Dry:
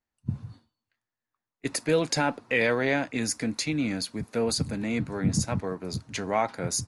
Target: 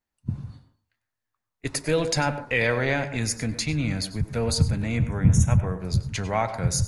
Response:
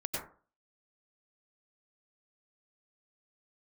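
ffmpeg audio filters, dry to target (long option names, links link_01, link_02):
-filter_complex "[0:a]asplit=3[link_01][link_02][link_03];[link_01]afade=type=out:start_time=4.96:duration=0.02[link_04];[link_02]asuperstop=centerf=4500:order=8:qfactor=2.3,afade=type=in:start_time=4.96:duration=0.02,afade=type=out:start_time=5.78:duration=0.02[link_05];[link_03]afade=type=in:start_time=5.78:duration=0.02[link_06];[link_04][link_05][link_06]amix=inputs=3:normalize=0,asplit=2[link_07][link_08];[1:a]atrim=start_sample=2205[link_09];[link_08][link_09]afir=irnorm=-1:irlink=0,volume=-12dB[link_10];[link_07][link_10]amix=inputs=2:normalize=0,asubboost=boost=10.5:cutoff=90"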